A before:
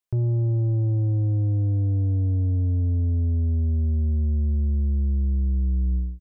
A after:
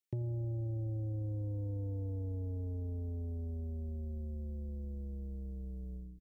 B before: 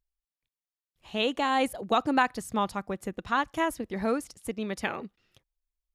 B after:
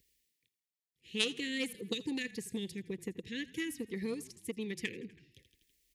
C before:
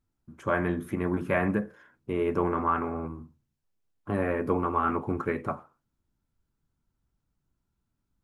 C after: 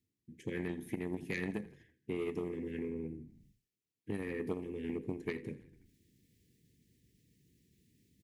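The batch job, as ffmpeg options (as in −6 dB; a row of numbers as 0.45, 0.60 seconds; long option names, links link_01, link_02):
-filter_complex "[0:a]asuperstop=centerf=940:order=20:qfactor=0.75,aeval=exprs='0.188*(cos(1*acos(clip(val(0)/0.188,-1,1)))-cos(1*PI/2))+0.0422*(cos(3*acos(clip(val(0)/0.188,-1,1)))-cos(3*PI/2))+0.00133*(cos(5*acos(clip(val(0)/0.188,-1,1)))-cos(5*PI/2))':channel_layout=same,acrossover=split=2800[link_01][link_02];[link_01]acompressor=threshold=-38dB:ratio=6[link_03];[link_03][link_02]amix=inputs=2:normalize=0,highpass=110,asplit=5[link_04][link_05][link_06][link_07][link_08];[link_05]adelay=82,afreqshift=-32,volume=-19dB[link_09];[link_06]adelay=164,afreqshift=-64,volume=-24.4dB[link_10];[link_07]adelay=246,afreqshift=-96,volume=-29.7dB[link_11];[link_08]adelay=328,afreqshift=-128,volume=-35.1dB[link_12];[link_04][link_09][link_10][link_11][link_12]amix=inputs=5:normalize=0,areverse,acompressor=mode=upward:threshold=-58dB:ratio=2.5,areverse,volume=4.5dB"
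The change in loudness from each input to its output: −16.5, −9.0, −11.0 LU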